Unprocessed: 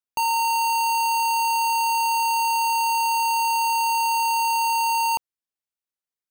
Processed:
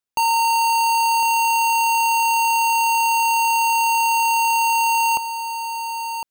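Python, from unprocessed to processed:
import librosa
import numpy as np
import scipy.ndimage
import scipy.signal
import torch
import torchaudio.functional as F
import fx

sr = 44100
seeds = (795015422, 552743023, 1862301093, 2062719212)

y = fx.peak_eq(x, sr, hz=14000.0, db=-4.0, octaves=0.29)
y = y + 10.0 ** (-9.0 / 20.0) * np.pad(y, (int(1057 * sr / 1000.0), 0))[:len(y)]
y = F.gain(torch.from_numpy(y), 4.0).numpy()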